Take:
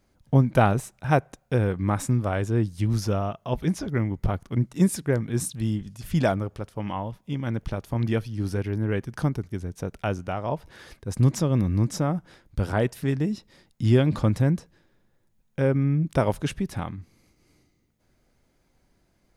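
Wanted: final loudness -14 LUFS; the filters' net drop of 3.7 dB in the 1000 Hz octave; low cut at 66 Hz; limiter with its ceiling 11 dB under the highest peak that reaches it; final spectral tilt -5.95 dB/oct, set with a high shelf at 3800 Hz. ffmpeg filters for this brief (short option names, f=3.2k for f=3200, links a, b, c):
-af "highpass=66,equalizer=f=1k:t=o:g=-6,highshelf=f=3.8k:g=6.5,volume=15.5dB,alimiter=limit=-2.5dB:level=0:latency=1"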